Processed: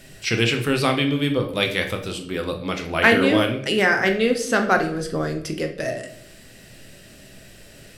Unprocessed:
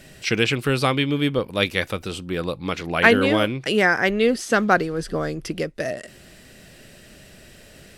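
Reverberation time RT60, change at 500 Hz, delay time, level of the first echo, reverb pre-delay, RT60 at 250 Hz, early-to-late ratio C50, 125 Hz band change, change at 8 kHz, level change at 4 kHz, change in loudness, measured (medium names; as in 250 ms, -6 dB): 0.60 s, 0.0 dB, no echo, no echo, 8 ms, 0.95 s, 9.5 dB, 0.0 dB, +2.0 dB, +1.0 dB, 0.0 dB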